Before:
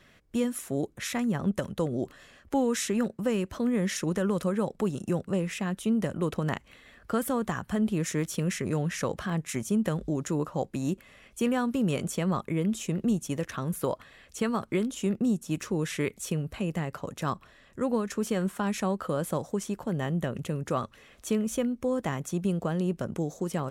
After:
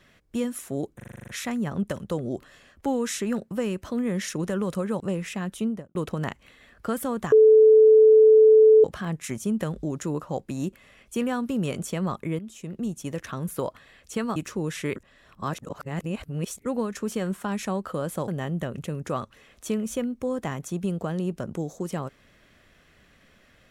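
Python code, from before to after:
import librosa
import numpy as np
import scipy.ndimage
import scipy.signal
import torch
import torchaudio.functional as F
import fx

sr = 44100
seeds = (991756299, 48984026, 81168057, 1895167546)

y = fx.studio_fade_out(x, sr, start_s=5.84, length_s=0.36)
y = fx.edit(y, sr, fx.stutter(start_s=0.96, slice_s=0.04, count=9),
    fx.cut(start_s=4.68, length_s=0.57),
    fx.bleep(start_s=7.57, length_s=1.52, hz=436.0, db=-10.5),
    fx.fade_in_from(start_s=12.64, length_s=0.85, floor_db=-13.5),
    fx.cut(start_s=14.61, length_s=0.9),
    fx.reverse_span(start_s=16.11, length_s=1.69),
    fx.cut(start_s=19.43, length_s=0.46), tone=tone)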